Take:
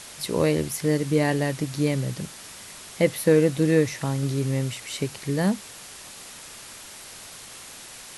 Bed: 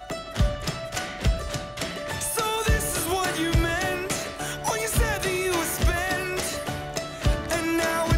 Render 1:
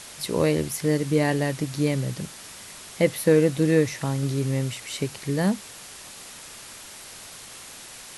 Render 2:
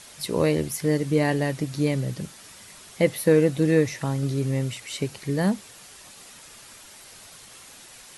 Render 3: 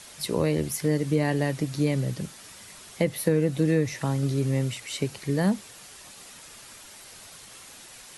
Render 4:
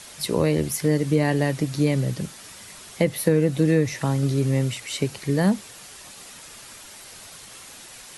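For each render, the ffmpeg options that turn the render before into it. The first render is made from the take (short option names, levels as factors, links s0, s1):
-af anull
-af "afftdn=nr=6:nf=-43"
-filter_complex "[0:a]acrossover=split=220[s0][s1];[s1]acompressor=threshold=0.0794:ratio=6[s2];[s0][s2]amix=inputs=2:normalize=0"
-af "volume=1.5"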